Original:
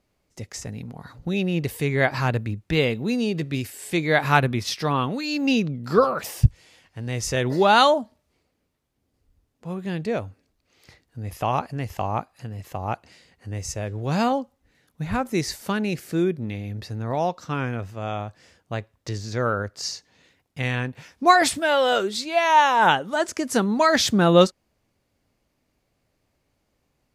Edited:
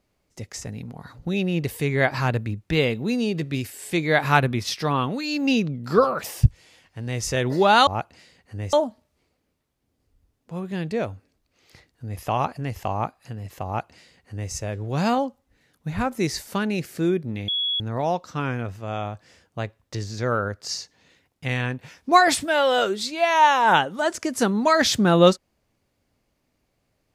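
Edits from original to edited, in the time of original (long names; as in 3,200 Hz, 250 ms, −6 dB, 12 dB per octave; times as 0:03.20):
0:12.80–0:13.66: duplicate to 0:07.87
0:16.62–0:16.94: beep over 3,360 Hz −21.5 dBFS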